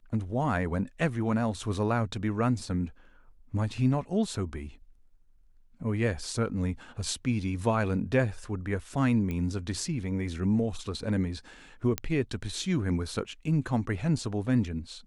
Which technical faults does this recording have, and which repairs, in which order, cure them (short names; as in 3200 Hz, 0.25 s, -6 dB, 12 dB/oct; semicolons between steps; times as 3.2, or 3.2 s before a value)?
9.31 pop -22 dBFS
11.98 pop -12 dBFS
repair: de-click